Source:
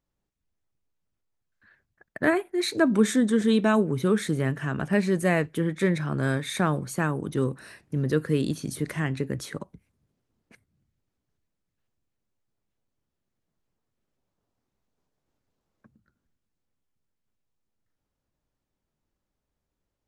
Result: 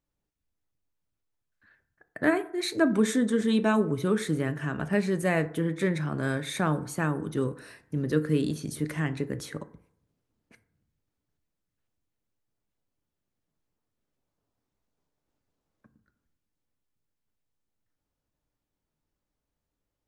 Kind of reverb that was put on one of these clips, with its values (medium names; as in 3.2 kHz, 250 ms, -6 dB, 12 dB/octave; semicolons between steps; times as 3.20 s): FDN reverb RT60 0.66 s, low-frequency decay 0.8×, high-frequency decay 0.4×, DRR 11 dB; trim -2.5 dB